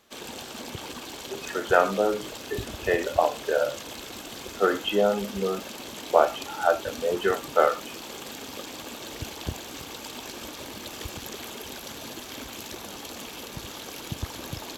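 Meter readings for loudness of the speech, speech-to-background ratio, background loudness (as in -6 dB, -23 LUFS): -26.0 LUFS, 11.0 dB, -37.0 LUFS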